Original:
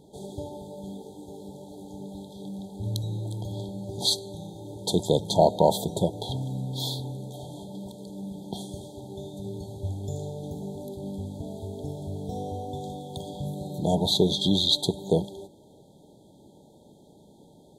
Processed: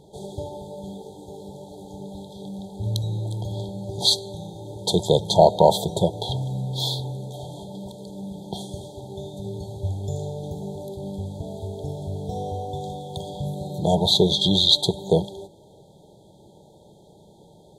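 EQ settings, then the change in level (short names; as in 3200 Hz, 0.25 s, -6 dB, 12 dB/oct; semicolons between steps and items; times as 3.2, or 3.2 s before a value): high shelf 8800 Hz -6.5 dB; dynamic EQ 2200 Hz, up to +3 dB, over -41 dBFS, Q 0.71; bell 260 Hz -13.5 dB 0.39 oct; +5.0 dB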